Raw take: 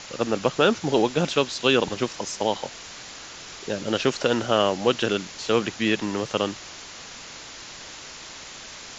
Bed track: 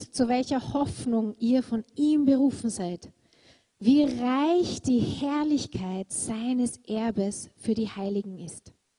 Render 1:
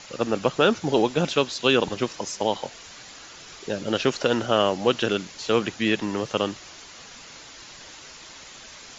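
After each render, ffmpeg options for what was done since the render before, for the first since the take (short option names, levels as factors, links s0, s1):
-af "afftdn=nr=6:nf=-41"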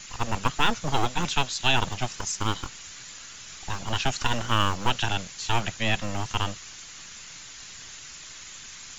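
-filter_complex "[0:a]acrossover=split=220|1100|1900[s0][s1][s2][s3];[s1]aeval=exprs='abs(val(0))':c=same[s4];[s0][s4][s2][s3]amix=inputs=4:normalize=0,aexciter=amount=2.1:drive=3.6:freq=6700"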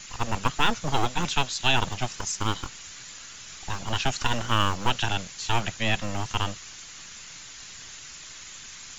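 -af anull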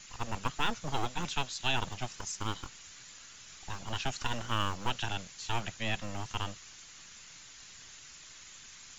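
-af "volume=0.376"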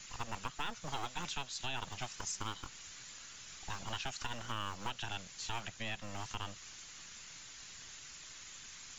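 -filter_complex "[0:a]acrossover=split=780[s0][s1];[s0]acompressor=threshold=0.01:ratio=6[s2];[s1]alimiter=level_in=1.78:limit=0.0631:level=0:latency=1:release=297,volume=0.562[s3];[s2][s3]amix=inputs=2:normalize=0"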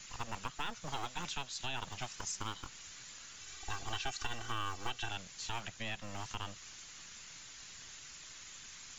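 -filter_complex "[0:a]asettb=1/sr,asplit=3[s0][s1][s2];[s0]atrim=end=3.414[s3];[s1]atrim=start=3.41:end=5.11,asetpts=PTS-STARTPTS,afade=t=in:d=0.004:c=qsin,afade=t=out:st=1.696:d=0.004:c=qsin,aecho=1:1:2.6:0.65,atrim=end_sample=74970[s4];[s2]atrim=start=5.106[s5];[s3][s4]acrossfade=d=0.004:c1=hsin:c2=qsin[s6];[s6][s5]acrossfade=d=0.004:c1=qsin:c2=hsin"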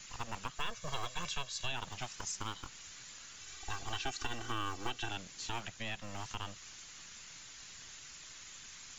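-filter_complex "[0:a]asettb=1/sr,asplit=3[s0][s1][s2];[s0]atrim=end=0.574[s3];[s1]atrim=start=0.57:end=1.72,asetpts=PTS-STARTPTS,afade=t=in:d=0.004:c=qsin,afade=t=out:st=1.146:d=0.004:c=qsin,aecho=1:1:1.8:0.65,atrim=end_sample=50715[s4];[s2]atrim=start=1.716[s5];[s3][s4]acrossfade=d=0.004:c1=hsin:c2=qsin[s6];[s6][s5]acrossfade=d=0.004:c1=qsin:c2=hsin,asettb=1/sr,asplit=3[s7][s8][s9];[s7]atrim=end=3.984[s10];[s8]atrim=start=3.98:end=5.61,asetpts=PTS-STARTPTS,afade=t=in:d=0.004:c=qsin,afade=t=out:st=1.626:d=0.004:c=qsin,equalizer=f=300:w=1.5:g=7[s11];[s9]atrim=start=5.606[s12];[s10][s11]acrossfade=d=0.004:c1=hsin:c2=qsin[s13];[s13][s12]acrossfade=d=0.004:c1=qsin:c2=hsin"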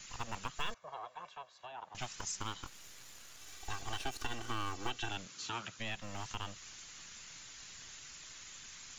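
-filter_complex "[0:a]asettb=1/sr,asplit=3[s0][s1][s2];[s0]atrim=end=0.744[s3];[s1]atrim=start=0.74:end=1.95,asetpts=PTS-STARTPTS,afade=t=in:d=0.004:c=qsin,afade=t=out:st=1.206:d=0.004:c=qsin,bandpass=f=800:t=q:w=2[s4];[s2]atrim=start=1.946[s5];[s3][s4]acrossfade=d=0.004:c1=hsin:c2=qsin[s6];[s6][s5]acrossfade=d=0.004:c1=qsin:c2=hsin,asettb=1/sr,asplit=3[s7][s8][s9];[s7]atrim=end=2.664[s10];[s8]atrim=start=2.66:end=4.72,asetpts=PTS-STARTPTS,afade=t=in:d=0.004:c=qsin,afade=t=out:st=2.056:d=0.004:c=qsin,aeval=exprs='max(val(0),0)':c=same[s11];[s9]atrim=start=4.716[s12];[s10][s11]acrossfade=d=0.004:c1=hsin:c2=qsin[s13];[s13][s12]acrossfade=d=0.004:c1=qsin:c2=hsin,asettb=1/sr,asplit=3[s14][s15][s16];[s14]atrim=end=5.264[s17];[s15]atrim=start=5.26:end=5.79,asetpts=PTS-STARTPTS,afade=t=in:d=0.004:c=qsin,afade=t=out:st=0.526:d=0.004:c=qsin,highpass=120,equalizer=f=740:t=q:w=4:g=-6,equalizer=f=1300:t=q:w=4:g=7,equalizer=f=1900:t=q:w=4:g=-4,lowpass=f=7500:w=0.5412,lowpass=f=7500:w=1.3066[s18];[s16]atrim=start=5.786[s19];[s17][s18]acrossfade=d=0.004:c1=hsin:c2=qsin[s20];[s20][s19]acrossfade=d=0.004:c1=qsin:c2=hsin"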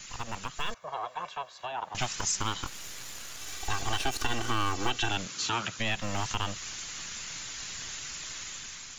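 -filter_complex "[0:a]asplit=2[s0][s1];[s1]alimiter=level_in=2.66:limit=0.0631:level=0:latency=1,volume=0.376,volume=1[s2];[s0][s2]amix=inputs=2:normalize=0,dynaudnorm=f=600:g=3:m=2"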